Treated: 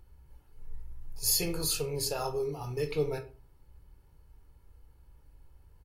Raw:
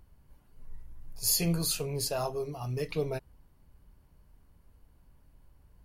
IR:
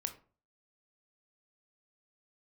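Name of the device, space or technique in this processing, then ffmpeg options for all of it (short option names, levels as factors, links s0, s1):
microphone above a desk: -filter_complex "[0:a]aecho=1:1:2.3:0.52[s0];[1:a]atrim=start_sample=2205[s1];[s0][s1]afir=irnorm=-1:irlink=0"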